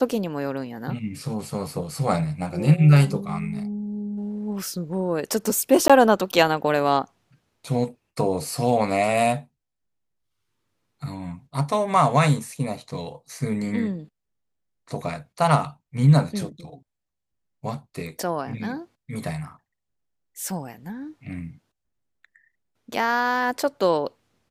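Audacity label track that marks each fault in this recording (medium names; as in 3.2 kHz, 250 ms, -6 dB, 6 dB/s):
5.880000	5.900000	dropout 16 ms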